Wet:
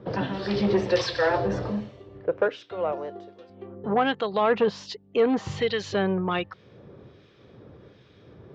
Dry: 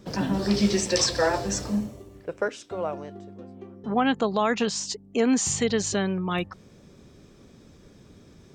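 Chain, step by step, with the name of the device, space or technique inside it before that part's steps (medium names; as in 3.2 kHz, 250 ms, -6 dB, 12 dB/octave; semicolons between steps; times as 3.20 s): guitar amplifier with harmonic tremolo (harmonic tremolo 1.3 Hz, depth 70%, crossover 1.6 kHz; saturation -20 dBFS, distortion -15 dB; cabinet simulation 90–3700 Hz, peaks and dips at 120 Hz +4 dB, 170 Hz -5 dB, 240 Hz -8 dB, 490 Hz +4 dB, 2.4 kHz -3 dB); 2.92–3.50 s: tone controls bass -12 dB, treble +14 dB; trim +6.5 dB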